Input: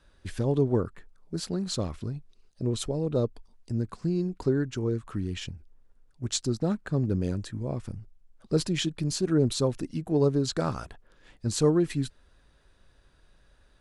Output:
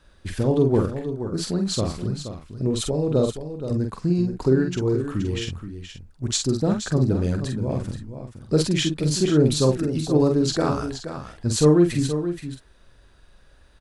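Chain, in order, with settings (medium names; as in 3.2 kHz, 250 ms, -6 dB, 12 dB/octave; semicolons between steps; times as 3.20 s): doubling 46 ms -5 dB; on a send: delay 475 ms -10 dB; on the sum: trim +5 dB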